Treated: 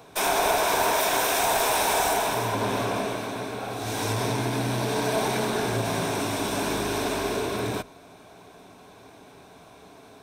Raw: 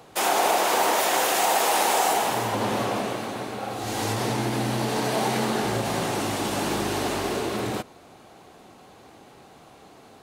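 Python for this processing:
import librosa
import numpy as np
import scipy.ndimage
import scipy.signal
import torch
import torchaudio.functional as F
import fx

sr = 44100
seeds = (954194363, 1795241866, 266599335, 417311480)

y = fx.diode_clip(x, sr, knee_db=-20.0)
y = fx.ripple_eq(y, sr, per_octave=1.6, db=7)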